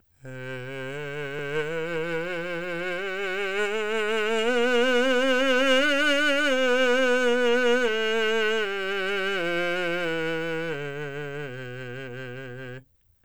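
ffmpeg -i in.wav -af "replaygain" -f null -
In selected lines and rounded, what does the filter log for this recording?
track_gain = +5.6 dB
track_peak = 0.281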